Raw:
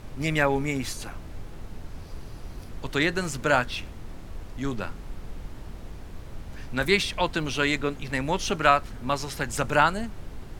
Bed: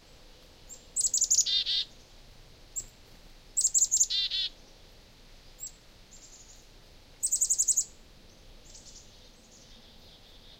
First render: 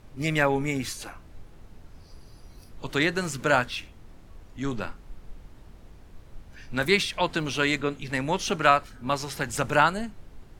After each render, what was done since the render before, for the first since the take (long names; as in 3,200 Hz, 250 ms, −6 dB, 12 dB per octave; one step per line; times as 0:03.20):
noise reduction from a noise print 9 dB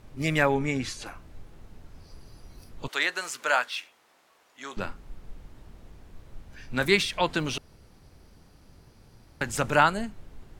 0:00.54–0:01.06: low-pass filter 7,200 Hz
0:02.88–0:04.77: high-pass filter 740 Hz
0:07.58–0:09.41: fill with room tone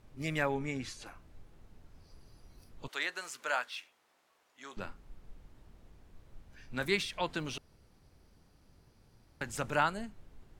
level −9 dB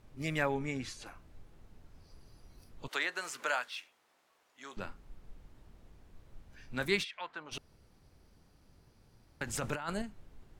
0:02.91–0:03.68: multiband upward and downward compressor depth 70%
0:07.03–0:07.51: resonant band-pass 2,600 Hz → 810 Hz, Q 1.6
0:09.47–0:10.02: compressor whose output falls as the input rises −36 dBFS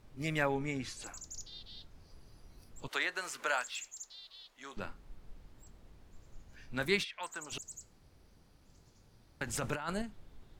mix in bed −23 dB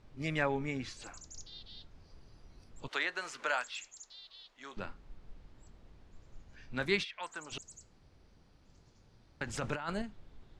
low-pass filter 5,900 Hz 12 dB per octave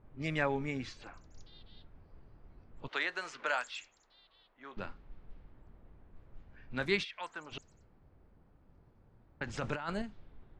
low-pass that shuts in the quiet parts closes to 1,300 Hz, open at −33 dBFS
high-shelf EQ 9,700 Hz −8 dB